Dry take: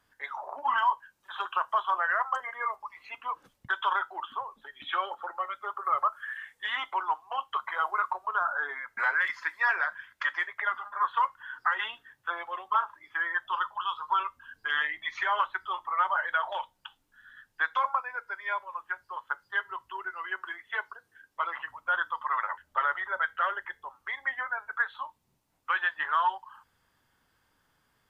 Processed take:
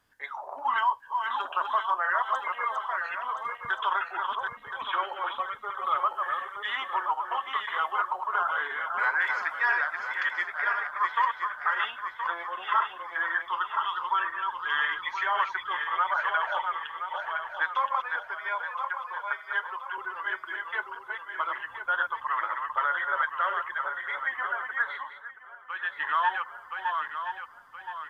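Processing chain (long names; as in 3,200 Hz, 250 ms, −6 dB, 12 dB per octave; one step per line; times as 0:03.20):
feedback delay that plays each chunk backwards 511 ms, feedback 62%, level −4.5 dB
0:18.55–0:19.98: high-pass filter 380 Hz 12 dB per octave
0:24.91–0:26.04: duck −10.5 dB, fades 0.35 s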